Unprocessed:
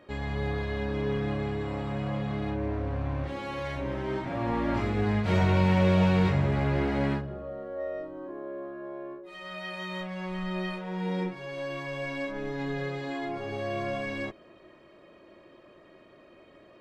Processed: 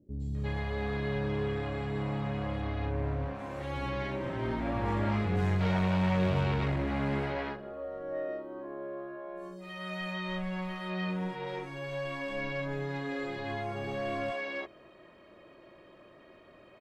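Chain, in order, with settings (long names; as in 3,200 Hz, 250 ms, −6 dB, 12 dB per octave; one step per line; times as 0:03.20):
soft clipping −23.5 dBFS, distortion −12 dB
three-band delay without the direct sound lows, highs, mids 110/350 ms, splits 320/5,900 Hz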